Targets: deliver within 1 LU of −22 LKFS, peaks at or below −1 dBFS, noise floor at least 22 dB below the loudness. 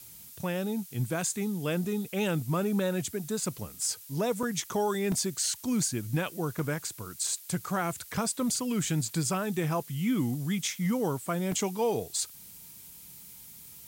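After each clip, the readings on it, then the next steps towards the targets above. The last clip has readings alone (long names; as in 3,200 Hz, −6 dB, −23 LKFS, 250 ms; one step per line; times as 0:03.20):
number of dropouts 4; longest dropout 2.9 ms; background noise floor −49 dBFS; target noise floor −53 dBFS; integrated loudness −30.5 LKFS; sample peak −17.5 dBFS; target loudness −22.0 LKFS
→ repair the gap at 0:04.43/0:05.12/0:06.59/0:11.52, 2.9 ms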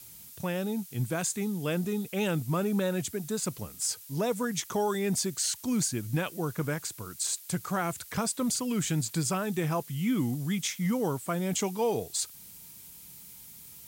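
number of dropouts 0; background noise floor −49 dBFS; target noise floor −53 dBFS
→ broadband denoise 6 dB, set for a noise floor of −49 dBFS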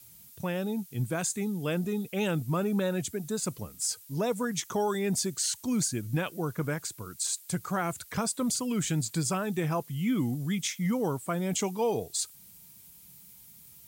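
background noise floor −53 dBFS; integrated loudness −30.5 LKFS; sample peak −17.5 dBFS; target loudness −22.0 LKFS
→ level +8.5 dB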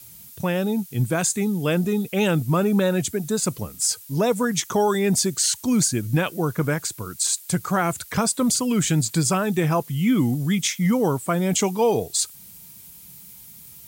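integrated loudness −22.0 LKFS; sample peak −9.0 dBFS; background noise floor −45 dBFS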